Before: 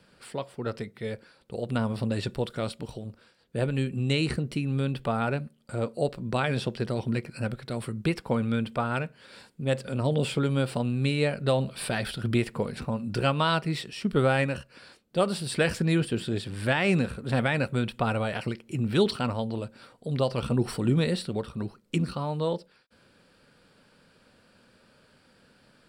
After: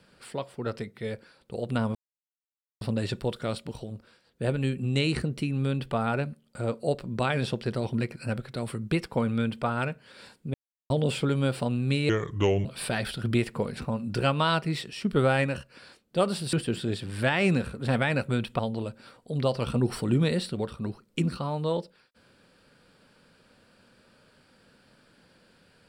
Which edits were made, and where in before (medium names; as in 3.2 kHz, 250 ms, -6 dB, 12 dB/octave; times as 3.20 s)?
1.95 s: insert silence 0.86 s
9.68–10.04 s: mute
11.23–11.65 s: speed 75%
15.53–15.97 s: delete
18.03–19.35 s: delete